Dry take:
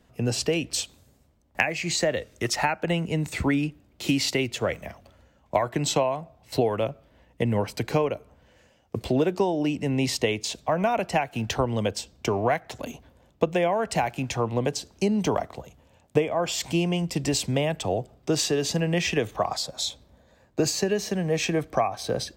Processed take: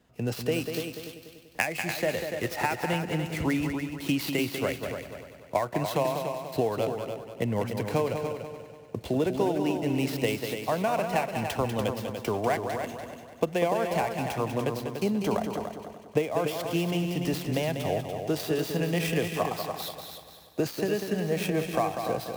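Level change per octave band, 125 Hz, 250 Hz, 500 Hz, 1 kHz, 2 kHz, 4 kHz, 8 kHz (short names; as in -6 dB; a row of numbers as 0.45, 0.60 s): -3.0, -2.5, -2.0, -2.0, -2.5, -6.5, -9.5 dB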